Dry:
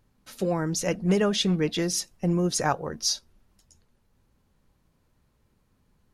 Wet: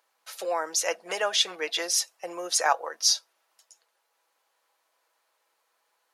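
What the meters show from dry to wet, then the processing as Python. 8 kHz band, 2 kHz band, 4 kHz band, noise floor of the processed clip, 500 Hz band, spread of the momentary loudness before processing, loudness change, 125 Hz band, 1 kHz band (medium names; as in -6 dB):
+4.0 dB, +4.0 dB, +4.0 dB, -75 dBFS, -4.0 dB, 5 LU, 0.0 dB, under -35 dB, +3.0 dB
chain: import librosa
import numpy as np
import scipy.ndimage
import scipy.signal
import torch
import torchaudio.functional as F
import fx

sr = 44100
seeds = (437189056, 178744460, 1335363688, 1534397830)

y = scipy.signal.sosfilt(scipy.signal.butter(4, 600.0, 'highpass', fs=sr, output='sos'), x)
y = y + 0.35 * np.pad(y, (int(6.1 * sr / 1000.0), 0))[:len(y)]
y = y * librosa.db_to_amplitude(3.5)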